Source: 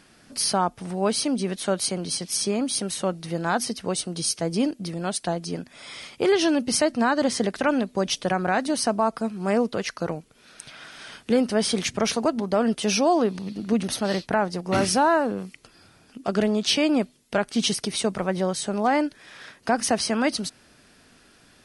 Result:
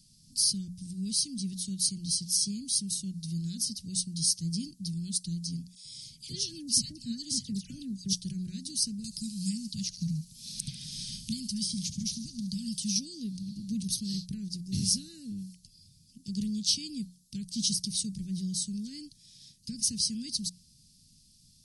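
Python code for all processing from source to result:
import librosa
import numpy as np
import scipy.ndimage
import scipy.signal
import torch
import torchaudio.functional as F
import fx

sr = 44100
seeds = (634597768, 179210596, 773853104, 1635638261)

y = fx.chain(x, sr, fx.peak_eq(hz=120.0, db=5.5, octaves=0.55),
    fx.dispersion(late='lows', ms=94.0, hz=1500.0), at=(5.75, 8.13))
y = fx.chain(y, sr, fx.cheby1_bandstop(low_hz=230.0, high_hz=840.0, order=2),
    fx.echo_wet_highpass(ms=71, feedback_pct=49, hz=3200.0, wet_db=-11.5),
    fx.band_squash(depth_pct=100), at=(9.04, 12.96))
y = scipy.signal.sosfilt(scipy.signal.ellip(3, 1.0, 80, [170.0, 4600.0], 'bandstop', fs=sr, output='sos'), y)
y = fx.hum_notches(y, sr, base_hz=60, count=3)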